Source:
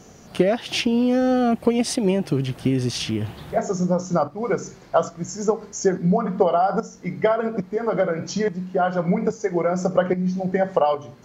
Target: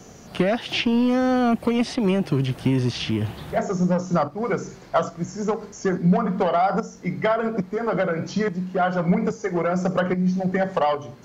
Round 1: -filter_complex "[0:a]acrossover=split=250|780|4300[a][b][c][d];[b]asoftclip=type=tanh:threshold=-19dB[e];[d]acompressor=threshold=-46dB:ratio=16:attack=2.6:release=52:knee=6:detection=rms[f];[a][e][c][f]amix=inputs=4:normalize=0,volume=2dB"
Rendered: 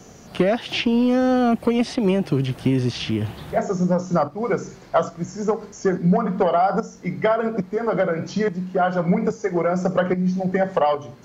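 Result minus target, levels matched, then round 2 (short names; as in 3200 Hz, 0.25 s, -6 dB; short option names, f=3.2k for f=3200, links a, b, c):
soft clip: distortion -6 dB
-filter_complex "[0:a]acrossover=split=250|780|4300[a][b][c][d];[b]asoftclip=type=tanh:threshold=-26dB[e];[d]acompressor=threshold=-46dB:ratio=16:attack=2.6:release=52:knee=6:detection=rms[f];[a][e][c][f]amix=inputs=4:normalize=0,volume=2dB"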